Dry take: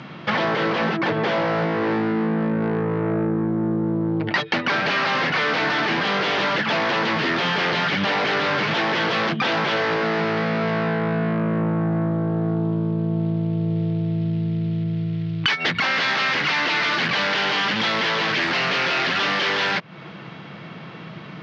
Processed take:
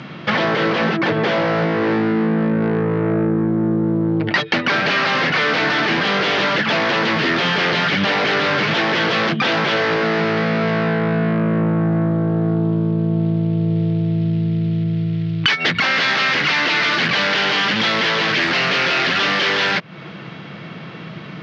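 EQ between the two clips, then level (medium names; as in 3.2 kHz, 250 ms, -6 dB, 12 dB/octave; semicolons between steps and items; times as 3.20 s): peaking EQ 910 Hz -3.5 dB 0.75 oct; +4.5 dB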